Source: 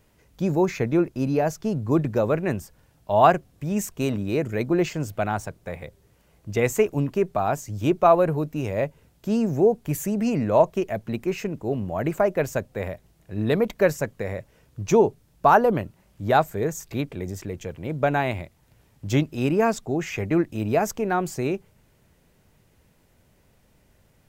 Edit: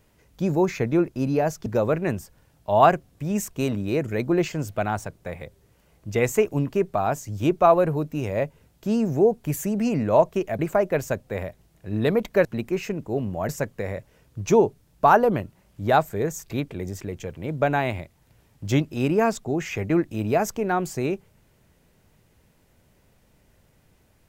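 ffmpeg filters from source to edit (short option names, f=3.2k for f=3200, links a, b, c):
-filter_complex "[0:a]asplit=5[a][b][c][d][e];[a]atrim=end=1.662[f];[b]atrim=start=2.068:end=11.002[g];[c]atrim=start=12.038:end=13.902[h];[d]atrim=start=10.998:end=12.042[i];[e]atrim=start=13.898[j];[f][g]acrossfade=d=0.004:c1=hsin:c2=hsin[k];[k][h]acrossfade=d=0.004:c1=hsin:c2=hsin[l];[l][i]acrossfade=d=0.004:c1=hsin:c2=hsin[m];[m][j]acrossfade=d=0.004:c1=hsin:c2=hsin"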